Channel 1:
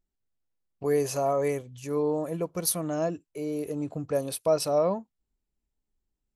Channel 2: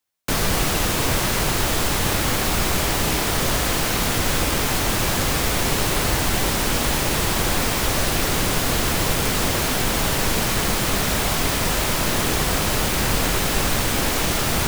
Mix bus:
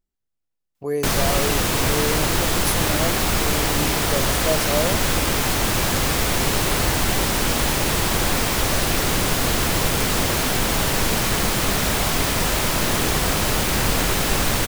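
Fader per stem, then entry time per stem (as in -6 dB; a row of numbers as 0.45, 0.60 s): +0.5, +0.5 dB; 0.00, 0.75 s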